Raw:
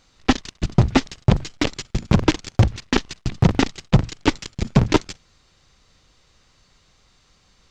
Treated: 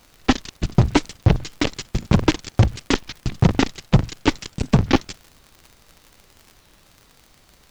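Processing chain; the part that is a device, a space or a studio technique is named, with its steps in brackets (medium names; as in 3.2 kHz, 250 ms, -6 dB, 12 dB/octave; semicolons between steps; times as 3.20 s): warped LP (warped record 33 1/3 rpm, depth 250 cents; crackle 75 per s -33 dBFS; pink noise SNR 35 dB)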